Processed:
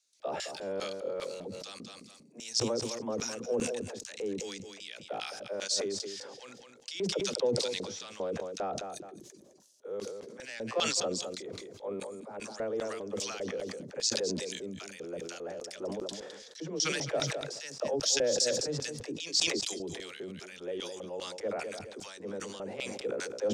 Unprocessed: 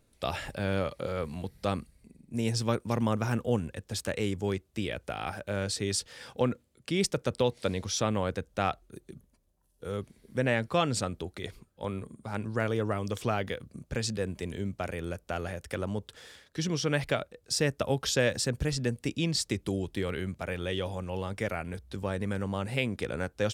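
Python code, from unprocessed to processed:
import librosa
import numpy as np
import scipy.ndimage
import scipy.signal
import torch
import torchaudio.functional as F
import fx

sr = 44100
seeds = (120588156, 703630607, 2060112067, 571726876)

y = scipy.signal.sosfilt(scipy.signal.butter(2, 160.0, 'highpass', fs=sr, output='sos'), x)
y = fx.peak_eq(y, sr, hz=6500.0, db=10.5, octaves=0.76)
y = 10.0 ** (-16.5 / 20.0) * np.tanh(y / 10.0 ** (-16.5 / 20.0))
y = fx.dispersion(y, sr, late='lows', ms=61.0, hz=330.0)
y = fx.filter_lfo_bandpass(y, sr, shape='square', hz=2.5, low_hz=490.0, high_hz=4900.0, q=1.6)
y = fx.echo_feedback(y, sr, ms=211, feedback_pct=20, wet_db=-13.5)
y = fx.sustainer(y, sr, db_per_s=33.0)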